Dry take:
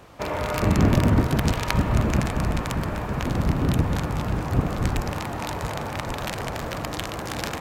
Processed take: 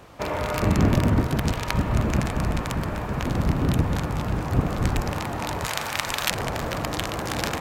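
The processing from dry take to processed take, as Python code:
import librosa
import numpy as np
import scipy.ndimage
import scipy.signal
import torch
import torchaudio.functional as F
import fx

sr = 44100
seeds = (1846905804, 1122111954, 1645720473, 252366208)

p1 = fx.tilt_shelf(x, sr, db=-9.0, hz=970.0, at=(5.64, 6.31))
p2 = fx.rider(p1, sr, range_db=10, speed_s=2.0)
p3 = p1 + (p2 * 10.0 ** (2.5 / 20.0))
y = p3 * 10.0 ** (-8.0 / 20.0)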